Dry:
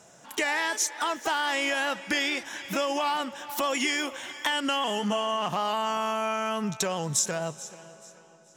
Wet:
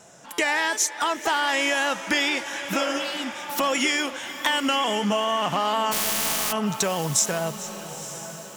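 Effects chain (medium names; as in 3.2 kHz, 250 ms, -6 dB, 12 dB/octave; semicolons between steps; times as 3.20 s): 5.91–6.51 s: spectral contrast reduction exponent 0.1; wow and flutter 25 cents; 2.82–3.41 s: spectral replace 390–2400 Hz both; echo that smears into a reverb 948 ms, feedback 44%, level -12.5 dB; buffer glitch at 0.33 s, samples 256, times 8; trim +4 dB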